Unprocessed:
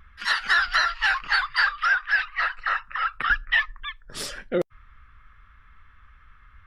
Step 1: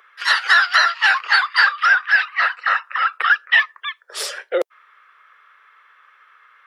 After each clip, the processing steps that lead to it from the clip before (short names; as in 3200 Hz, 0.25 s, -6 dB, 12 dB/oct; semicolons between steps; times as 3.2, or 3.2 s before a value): steep high-pass 410 Hz 48 dB/oct; gain +7 dB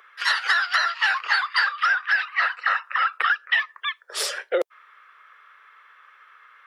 compressor 6:1, threshold -18 dBFS, peak gain reduction 8.5 dB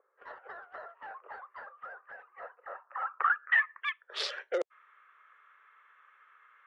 Wiener smoothing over 9 samples; low-pass sweep 520 Hz -> 7000 Hz, 2.66–4.65; gain -8.5 dB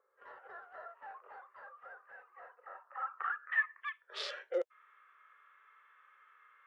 harmonic-percussive split percussive -15 dB; gain +1 dB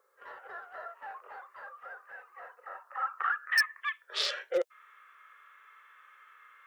wavefolder -25.5 dBFS; high shelf 2700 Hz +9 dB; gain +4.5 dB